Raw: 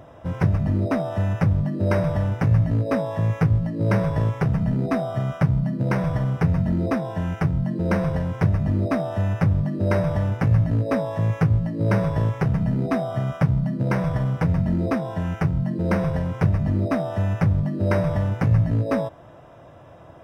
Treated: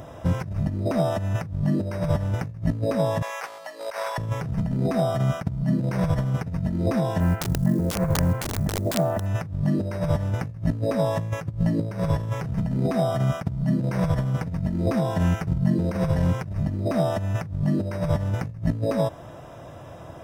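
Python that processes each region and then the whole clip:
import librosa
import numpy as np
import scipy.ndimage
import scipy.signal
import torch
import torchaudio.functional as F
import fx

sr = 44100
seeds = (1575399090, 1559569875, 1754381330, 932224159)

y = fx.chain(x, sr, fx.highpass(hz=690.0, slope=24),
    fx.over_compress(threshold_db=-33.0, ratio=-0.5), at=(3.22, 4.18))
y = fx.chain(y, sr, fx.lowpass(hz=2200.0, slope=24),
    fx.quant_companded(bits=8),
    fx.overflow_wrap(gain_db=14.5), at=(7.2, 9.26))
y = fx.bass_treble(y, sr, bass_db=2, treble_db=9)
y = fx.over_compress(y, sr, threshold_db=-23.0, ratio=-0.5)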